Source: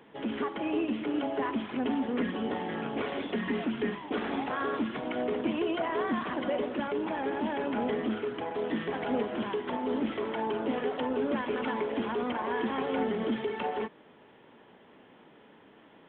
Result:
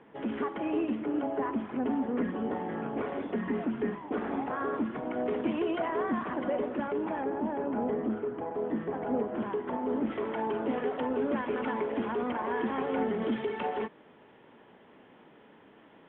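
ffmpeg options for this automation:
-af "asetnsamples=n=441:p=0,asendcmd='0.95 lowpass f 1500;5.26 lowpass f 2500;5.9 lowpass f 1800;7.24 lowpass f 1100;9.34 lowpass f 1500;10.1 lowpass f 2300;13.22 lowpass f 3300',lowpass=2.2k"

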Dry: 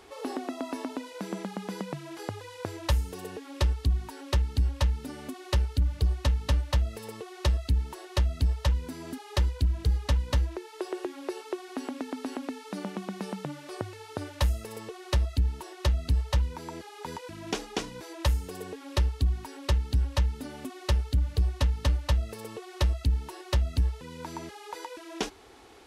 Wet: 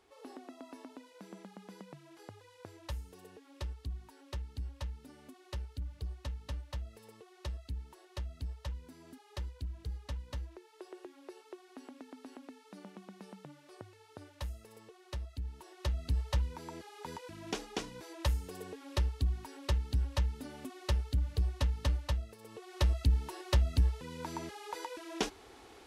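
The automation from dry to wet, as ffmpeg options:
-af "volume=6.5dB,afade=t=in:st=15.39:d=0.86:silence=0.354813,afade=t=out:st=21.99:d=0.39:silence=0.375837,afade=t=in:st=22.38:d=0.59:silence=0.237137"

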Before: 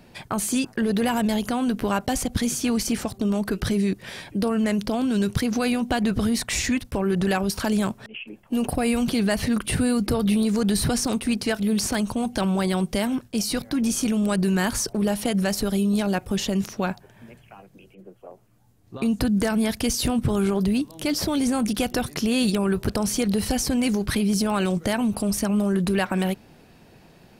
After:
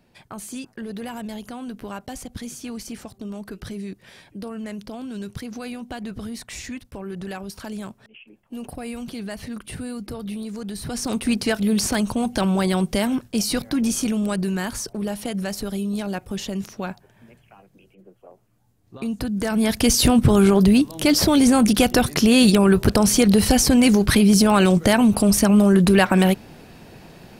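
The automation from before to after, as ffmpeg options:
-af "volume=14dB,afade=t=in:st=10.84:d=0.44:silence=0.237137,afade=t=out:st=13.65:d=1.01:silence=0.473151,afade=t=in:st=19.37:d=0.59:silence=0.266073"

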